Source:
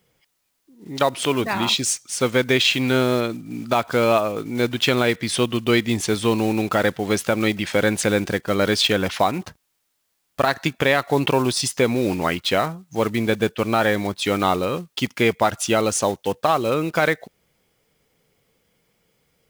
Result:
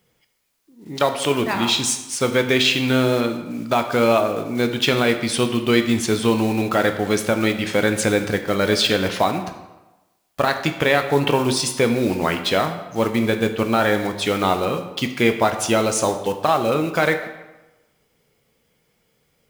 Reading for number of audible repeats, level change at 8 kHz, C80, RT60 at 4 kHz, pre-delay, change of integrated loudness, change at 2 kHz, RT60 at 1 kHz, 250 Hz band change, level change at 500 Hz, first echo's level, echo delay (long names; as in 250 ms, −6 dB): no echo audible, +0.5 dB, 11.0 dB, 0.80 s, 9 ms, +1.0 dB, +1.0 dB, 1.1 s, +1.5 dB, +1.0 dB, no echo audible, no echo audible